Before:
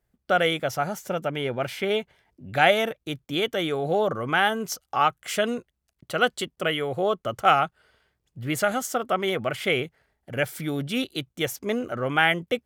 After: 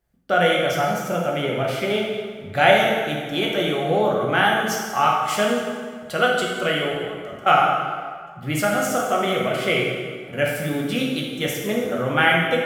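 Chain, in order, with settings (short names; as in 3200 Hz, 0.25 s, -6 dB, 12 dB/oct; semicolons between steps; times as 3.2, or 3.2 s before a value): 6.9–7.47 level quantiser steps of 19 dB; plate-style reverb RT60 1.8 s, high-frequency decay 0.75×, DRR -2.5 dB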